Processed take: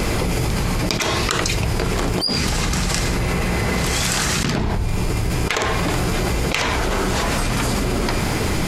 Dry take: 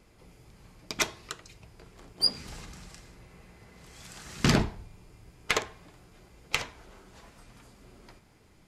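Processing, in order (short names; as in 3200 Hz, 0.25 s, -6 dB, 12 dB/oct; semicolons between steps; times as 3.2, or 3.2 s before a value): fast leveller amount 100%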